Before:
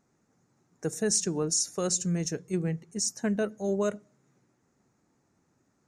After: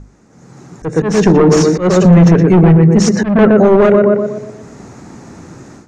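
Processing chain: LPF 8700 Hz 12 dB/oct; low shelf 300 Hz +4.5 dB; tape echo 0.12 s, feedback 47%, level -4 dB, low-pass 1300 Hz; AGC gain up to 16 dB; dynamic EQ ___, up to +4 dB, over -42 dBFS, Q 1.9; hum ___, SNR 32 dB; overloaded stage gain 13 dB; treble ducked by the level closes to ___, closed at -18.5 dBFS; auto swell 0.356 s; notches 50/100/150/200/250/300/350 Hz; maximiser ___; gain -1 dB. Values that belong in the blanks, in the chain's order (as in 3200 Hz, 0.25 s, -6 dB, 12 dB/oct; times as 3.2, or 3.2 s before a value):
2100 Hz, 50 Hz, 2200 Hz, +19 dB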